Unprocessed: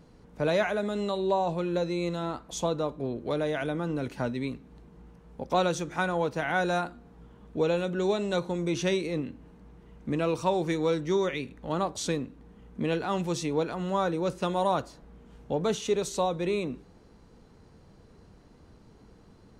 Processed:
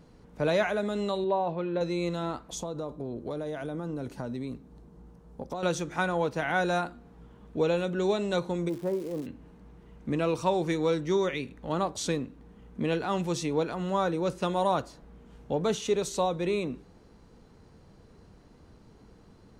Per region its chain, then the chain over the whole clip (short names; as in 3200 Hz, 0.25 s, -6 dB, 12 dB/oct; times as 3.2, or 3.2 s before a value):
1.24–1.81 HPF 170 Hz 6 dB/oct + air absorption 270 m
2.55–5.63 compressor 10:1, threshold -29 dBFS + bell 2400 Hz -8.5 dB 1.5 oct
8.68–9.25 LPF 1100 Hz 24 dB/oct + low shelf 190 Hz -11 dB + crackle 500/s -40 dBFS
whole clip: dry